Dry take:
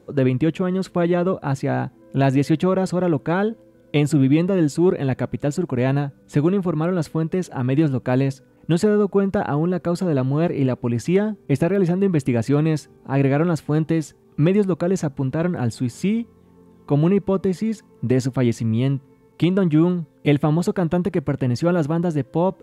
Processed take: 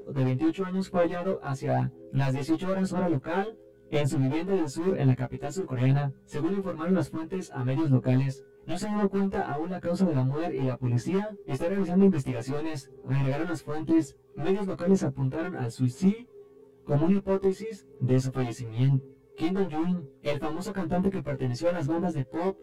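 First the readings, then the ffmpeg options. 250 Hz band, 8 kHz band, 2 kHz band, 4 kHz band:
−8.0 dB, −7.0 dB, −7.5 dB, −7.0 dB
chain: -af "asoftclip=type=hard:threshold=-15.5dB,aeval=exprs='val(0)+0.0282*sin(2*PI*410*n/s)':channel_layout=same,aphaser=in_gain=1:out_gain=1:delay=2.8:decay=0.52:speed=1:type=sinusoidal,afftfilt=real='re*1.73*eq(mod(b,3),0)':imag='im*1.73*eq(mod(b,3),0)':win_size=2048:overlap=0.75,volume=-6dB"

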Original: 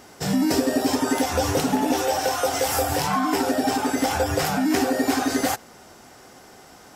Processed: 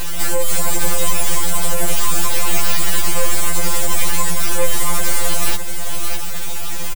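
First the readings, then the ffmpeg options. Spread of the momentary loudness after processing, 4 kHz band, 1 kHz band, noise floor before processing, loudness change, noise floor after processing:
6 LU, +5.0 dB, −2.5 dB, −48 dBFS, +3.0 dB, −16 dBFS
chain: -filter_complex "[0:a]highshelf=frequency=6700:width_type=q:width=3:gain=7.5,acrossover=split=140[link_01][link_02];[link_02]acompressor=threshold=-59dB:ratio=1.5[link_03];[link_01][link_03]amix=inputs=2:normalize=0,asuperstop=centerf=1000:order=4:qfactor=1.2,acompressor=threshold=-35dB:ratio=6,bass=frequency=250:gain=-15,treble=frequency=4000:gain=2,aeval=exprs='abs(val(0))':channel_layout=same,tremolo=f=57:d=0.462,aecho=1:1:607:0.266,alimiter=level_in=33.5dB:limit=-1dB:release=50:level=0:latency=1,afftfilt=real='re*2.83*eq(mod(b,8),0)':imag='im*2.83*eq(mod(b,8),0)':win_size=2048:overlap=0.75,volume=-2.5dB"

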